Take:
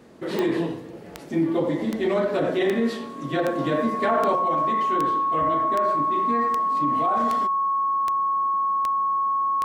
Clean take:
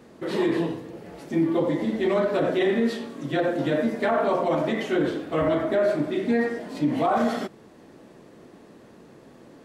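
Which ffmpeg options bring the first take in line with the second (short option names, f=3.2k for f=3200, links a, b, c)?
-af "adeclick=t=4,bandreject=f=1.1k:w=30,asetnsamples=n=441:p=0,asendcmd='4.35 volume volume 5.5dB',volume=0dB"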